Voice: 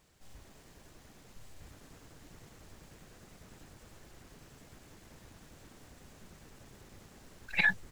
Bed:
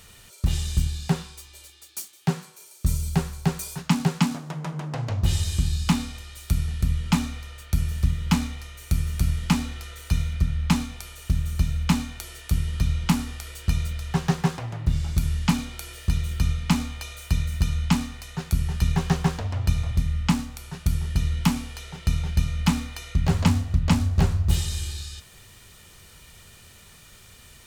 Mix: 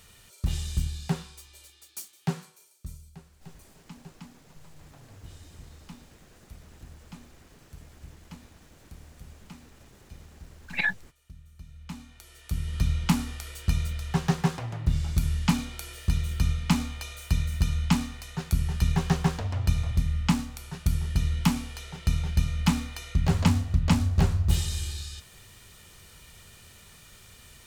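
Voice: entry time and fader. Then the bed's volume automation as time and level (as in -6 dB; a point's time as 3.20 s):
3.20 s, +0.5 dB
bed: 2.43 s -5 dB
3.13 s -25 dB
11.56 s -25 dB
12.82 s -2 dB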